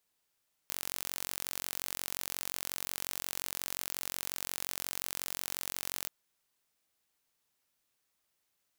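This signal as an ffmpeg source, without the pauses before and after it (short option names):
-f lavfi -i "aevalsrc='0.335*eq(mod(n,967),0)':d=5.38:s=44100"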